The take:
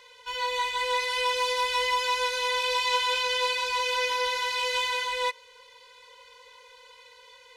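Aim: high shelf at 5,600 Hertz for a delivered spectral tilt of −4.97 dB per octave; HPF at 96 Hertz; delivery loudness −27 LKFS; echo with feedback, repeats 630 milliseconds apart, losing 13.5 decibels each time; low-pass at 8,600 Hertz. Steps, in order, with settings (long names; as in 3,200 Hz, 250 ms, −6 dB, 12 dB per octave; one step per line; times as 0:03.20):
high-pass filter 96 Hz
low-pass filter 8,600 Hz
high-shelf EQ 5,600 Hz +3.5 dB
repeating echo 630 ms, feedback 21%, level −13.5 dB
level −1.5 dB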